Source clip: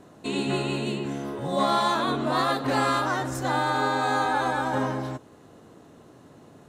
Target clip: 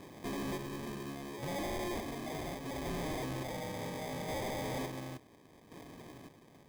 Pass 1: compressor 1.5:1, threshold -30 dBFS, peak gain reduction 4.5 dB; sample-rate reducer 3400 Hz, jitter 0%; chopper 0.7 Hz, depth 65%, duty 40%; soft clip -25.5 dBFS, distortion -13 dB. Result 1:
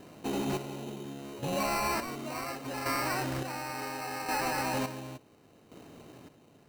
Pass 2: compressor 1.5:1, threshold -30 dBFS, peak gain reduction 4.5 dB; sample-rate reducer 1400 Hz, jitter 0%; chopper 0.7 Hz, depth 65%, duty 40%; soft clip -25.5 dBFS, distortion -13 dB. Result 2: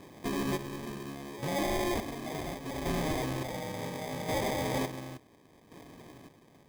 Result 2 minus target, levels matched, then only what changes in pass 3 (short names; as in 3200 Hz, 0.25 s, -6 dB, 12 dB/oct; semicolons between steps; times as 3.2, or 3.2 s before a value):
soft clip: distortion -8 dB
change: soft clip -35.5 dBFS, distortion -5 dB